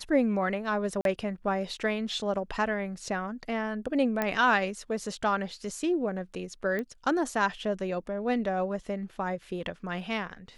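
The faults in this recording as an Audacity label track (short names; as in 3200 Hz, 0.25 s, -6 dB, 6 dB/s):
1.010000	1.050000	gap 42 ms
4.220000	4.220000	pop -14 dBFS
6.790000	6.790000	pop -21 dBFS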